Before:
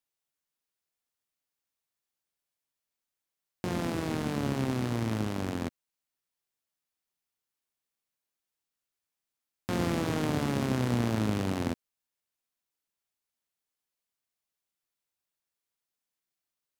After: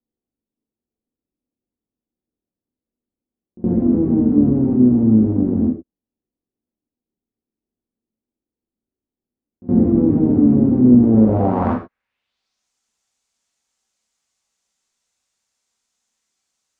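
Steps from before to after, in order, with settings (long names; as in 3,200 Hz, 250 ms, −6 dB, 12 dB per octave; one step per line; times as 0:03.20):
echo ahead of the sound 69 ms −22 dB
low-pass filter sweep 320 Hz → 7,000 Hz, 0:11.00–0:12.67
reverb whose tail is shaped and stops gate 150 ms falling, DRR −1.5 dB
level +8.5 dB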